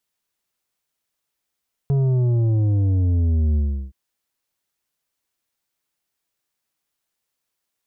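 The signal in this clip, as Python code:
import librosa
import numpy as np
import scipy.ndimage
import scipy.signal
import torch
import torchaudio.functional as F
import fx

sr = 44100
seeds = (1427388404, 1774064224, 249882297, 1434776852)

y = fx.sub_drop(sr, level_db=-16.5, start_hz=140.0, length_s=2.02, drive_db=8.0, fade_s=0.36, end_hz=65.0)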